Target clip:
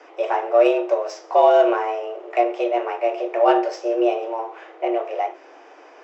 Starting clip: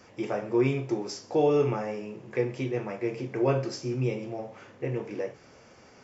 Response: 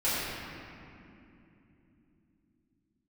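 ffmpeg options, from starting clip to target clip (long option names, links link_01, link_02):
-af "afreqshift=230,adynamicsmooth=sensitivity=1.5:basefreq=3300,volume=9dB"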